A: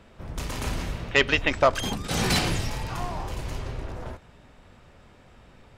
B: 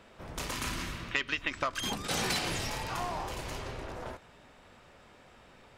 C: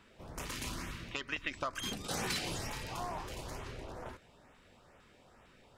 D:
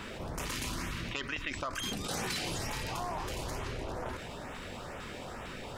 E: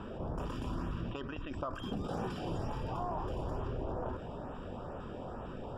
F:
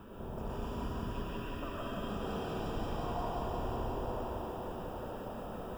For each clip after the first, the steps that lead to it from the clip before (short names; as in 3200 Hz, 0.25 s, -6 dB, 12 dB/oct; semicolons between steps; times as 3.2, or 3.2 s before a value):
spectral gain 0.53–1.89, 380–950 Hz -8 dB; low shelf 210 Hz -11.5 dB; compressor 8:1, threshold -28 dBFS, peak gain reduction 12.5 dB
LFO notch saw up 2.2 Hz 520–5100 Hz; gain -4 dB
fast leveller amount 70%; gain -1 dB
running mean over 21 samples; gain +2 dB
added noise violet -66 dBFS; thinning echo 0.177 s, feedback 85%, high-pass 180 Hz, level -5 dB; reverb RT60 2.1 s, pre-delay 83 ms, DRR -4.5 dB; gain -7.5 dB